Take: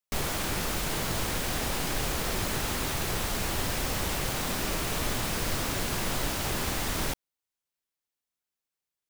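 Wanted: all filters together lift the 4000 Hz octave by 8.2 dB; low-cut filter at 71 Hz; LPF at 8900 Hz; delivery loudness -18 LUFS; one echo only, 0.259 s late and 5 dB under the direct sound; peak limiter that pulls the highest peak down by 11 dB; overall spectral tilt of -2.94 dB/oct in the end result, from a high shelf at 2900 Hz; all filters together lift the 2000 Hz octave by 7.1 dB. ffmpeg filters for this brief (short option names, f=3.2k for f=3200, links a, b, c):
-af "highpass=71,lowpass=8.9k,equalizer=f=2k:t=o:g=5.5,highshelf=f=2.9k:g=5.5,equalizer=f=4k:t=o:g=4.5,alimiter=level_in=1dB:limit=-24dB:level=0:latency=1,volume=-1dB,aecho=1:1:259:0.562,volume=13dB"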